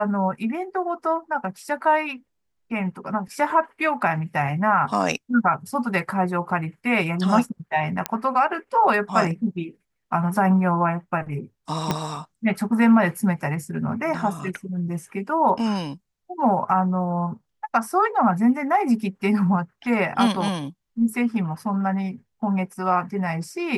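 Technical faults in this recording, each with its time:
8.06 s: pop -6 dBFS
11.91 s: pop -8 dBFS

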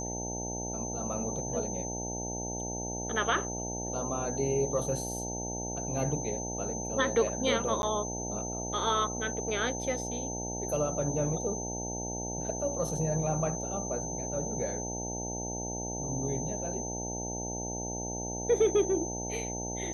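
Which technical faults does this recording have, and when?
buzz 60 Hz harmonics 15 -38 dBFS
whine 6.2 kHz -37 dBFS
7.82–7.83 s: dropout 11 ms

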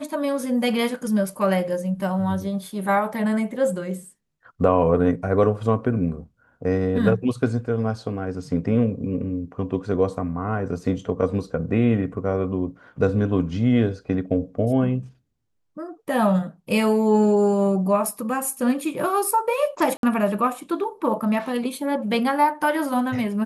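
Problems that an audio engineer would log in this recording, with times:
19.97–20.03 s: dropout 62 ms

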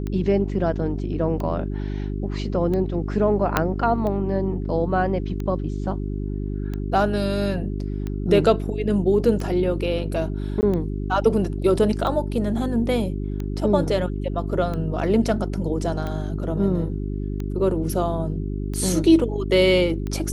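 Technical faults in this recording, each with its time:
hum 50 Hz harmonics 8 -27 dBFS
tick 45 rpm -18 dBFS
3.57 s: pop -3 dBFS
10.61–10.63 s: dropout 19 ms

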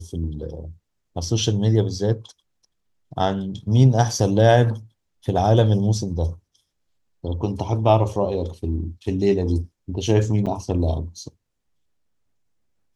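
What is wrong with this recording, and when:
10.46–10.47 s: dropout 7.1 ms

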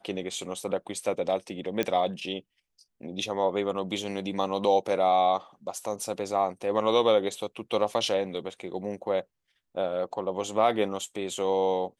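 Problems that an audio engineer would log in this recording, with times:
1.83 s: pop -13 dBFS

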